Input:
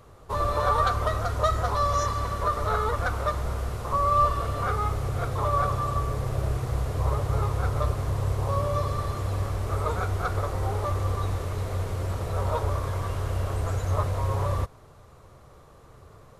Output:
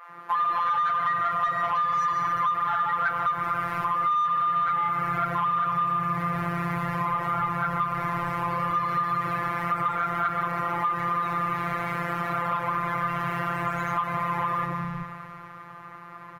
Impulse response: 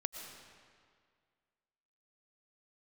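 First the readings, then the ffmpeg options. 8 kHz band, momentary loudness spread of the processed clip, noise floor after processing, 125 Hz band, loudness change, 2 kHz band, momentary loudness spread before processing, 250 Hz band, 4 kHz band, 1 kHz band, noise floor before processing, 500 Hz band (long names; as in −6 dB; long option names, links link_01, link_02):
below −10 dB, 5 LU, −44 dBFS, −9.5 dB, +1.5 dB, +7.0 dB, 6 LU, +4.0 dB, −2.5 dB, +4.5 dB, −52 dBFS, −7.0 dB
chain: -filter_complex "[0:a]highpass=74,acrossover=split=160|570[link_01][link_02][link_03];[link_02]adelay=90[link_04];[link_01]adelay=380[link_05];[link_05][link_04][link_03]amix=inputs=3:normalize=0,asplit=2[link_06][link_07];[1:a]atrim=start_sample=2205,highshelf=frequency=8900:gain=11[link_08];[link_07][link_08]afir=irnorm=-1:irlink=0,volume=3dB[link_09];[link_06][link_09]amix=inputs=2:normalize=0,afftfilt=real='hypot(re,im)*cos(PI*b)':imag='0':win_size=1024:overlap=0.75,asplit=2[link_10][link_11];[link_11]highpass=frequency=720:poles=1,volume=22dB,asoftclip=type=tanh:threshold=-3.5dB[link_12];[link_10][link_12]amix=inputs=2:normalize=0,lowpass=frequency=1400:poles=1,volume=-6dB,equalizer=frequency=125:width_type=o:width=1:gain=10,equalizer=frequency=500:width_type=o:width=1:gain=-9,equalizer=frequency=1000:width_type=o:width=1:gain=4,equalizer=frequency=2000:width_type=o:width=1:gain=8,equalizer=frequency=4000:width_type=o:width=1:gain=-7,equalizer=frequency=8000:width_type=o:width=1:gain=-12,acompressor=threshold=-17dB:ratio=16,adynamicequalizer=threshold=0.0158:dfrequency=1700:dqfactor=0.7:tfrequency=1700:tqfactor=0.7:attack=5:release=100:ratio=0.375:range=3:mode=boostabove:tftype=highshelf,volume=-6dB"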